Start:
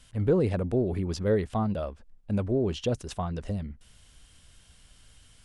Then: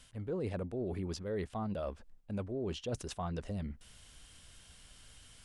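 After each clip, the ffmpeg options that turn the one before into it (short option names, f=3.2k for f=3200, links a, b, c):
-af "lowshelf=f=200:g=-4.5,areverse,acompressor=threshold=-36dB:ratio=6,areverse,volume=1dB"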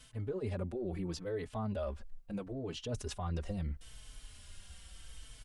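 -filter_complex "[0:a]alimiter=level_in=8dB:limit=-24dB:level=0:latency=1:release=61,volume=-8dB,asubboost=boost=2.5:cutoff=90,asplit=2[a][b];[b]adelay=4.1,afreqshift=-0.76[c];[a][c]amix=inputs=2:normalize=1,volume=4.5dB"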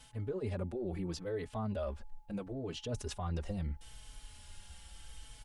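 -af "aeval=exprs='val(0)+0.000398*sin(2*PI*850*n/s)':c=same"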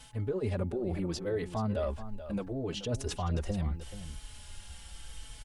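-af "aecho=1:1:430:0.237,volume=5dB"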